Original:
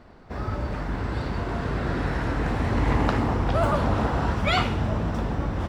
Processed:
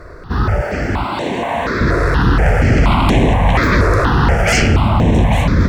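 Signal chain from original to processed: 0.61–1.81 HPF 350 Hz 12 dB/oct; sine folder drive 14 dB, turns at -7.5 dBFS; echo with dull and thin repeats by turns 0.423 s, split 1000 Hz, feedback 63%, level -6 dB; step phaser 4.2 Hz 820–4800 Hz

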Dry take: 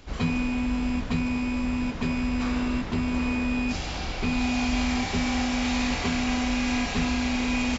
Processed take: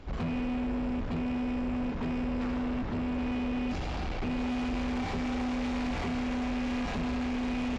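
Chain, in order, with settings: LPF 1300 Hz 6 dB/oct; in parallel at +0.5 dB: limiter -21.5 dBFS, peak gain reduction 7 dB; on the sum: soft clip -25.5 dBFS, distortion -9 dB; gain -3.5 dB

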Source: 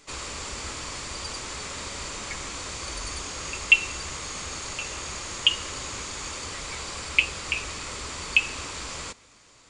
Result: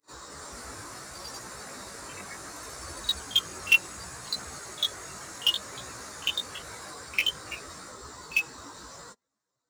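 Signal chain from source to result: per-bin expansion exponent 2; HPF 54 Hz; low shelf 70 Hz -7.5 dB; in parallel at -10 dB: sample-rate reducer 8400 Hz, jitter 20%; on the sum: echoes that change speed 0.23 s, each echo +3 st, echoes 2; chorus voices 2, 0.68 Hz, delay 18 ms, depth 3.5 ms; on a send: reverse echo 49 ms -21 dB

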